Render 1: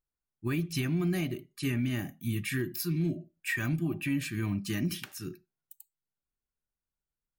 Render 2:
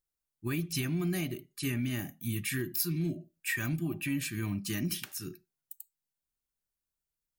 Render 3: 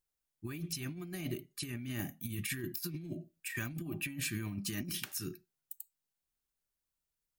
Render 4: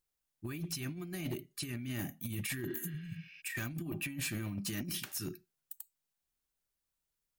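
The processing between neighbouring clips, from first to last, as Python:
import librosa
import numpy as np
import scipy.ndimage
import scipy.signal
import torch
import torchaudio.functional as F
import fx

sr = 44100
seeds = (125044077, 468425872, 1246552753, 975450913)

y1 = fx.high_shelf(x, sr, hz=4700.0, db=8.5)
y1 = y1 * 10.0 ** (-2.5 / 20.0)
y2 = fx.over_compress(y1, sr, threshold_db=-35.0, ratio=-0.5)
y2 = y2 * 10.0 ** (-3.0 / 20.0)
y3 = fx.spec_repair(y2, sr, seeds[0], start_s=2.7, length_s=0.68, low_hz=210.0, high_hz=6200.0, source='both')
y3 = np.clip(10.0 ** (33.0 / 20.0) * y3, -1.0, 1.0) / 10.0 ** (33.0 / 20.0)
y3 = y3 * 10.0 ** (1.0 / 20.0)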